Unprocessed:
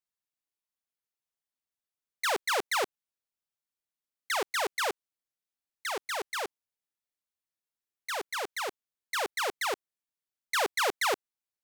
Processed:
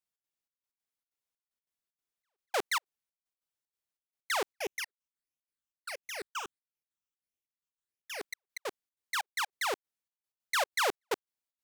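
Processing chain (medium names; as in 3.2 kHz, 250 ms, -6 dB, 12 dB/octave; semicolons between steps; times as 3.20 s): trance gate "xx.xxx..x.x" 189 bpm -60 dB; 4.55–8.21 s: phase shifter stages 8, 1.5 Hz, lowest notch 560–1400 Hz; trim -1 dB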